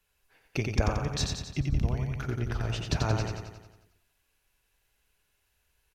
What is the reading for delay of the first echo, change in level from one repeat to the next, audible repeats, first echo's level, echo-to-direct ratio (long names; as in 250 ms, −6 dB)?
89 ms, −5.0 dB, 7, −4.0 dB, −2.5 dB